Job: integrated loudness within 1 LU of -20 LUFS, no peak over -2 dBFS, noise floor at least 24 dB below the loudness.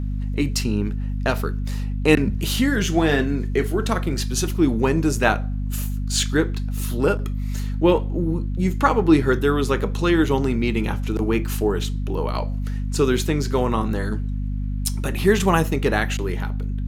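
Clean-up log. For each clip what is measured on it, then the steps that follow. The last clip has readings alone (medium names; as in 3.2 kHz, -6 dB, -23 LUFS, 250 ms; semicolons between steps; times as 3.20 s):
hum 50 Hz; highest harmonic 250 Hz; hum level -22 dBFS; loudness -22.0 LUFS; peak level -1.5 dBFS; loudness target -20.0 LUFS
-> hum notches 50/100/150/200/250 Hz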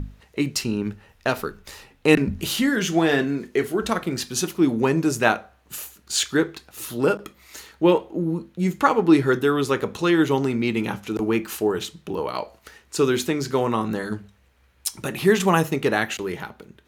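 hum not found; loudness -23.0 LUFS; peak level -2.0 dBFS; loudness target -20.0 LUFS
-> trim +3 dB; peak limiter -2 dBFS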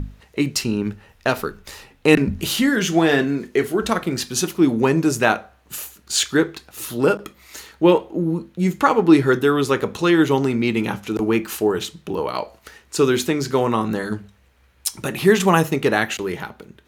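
loudness -20.0 LUFS; peak level -2.0 dBFS; noise floor -56 dBFS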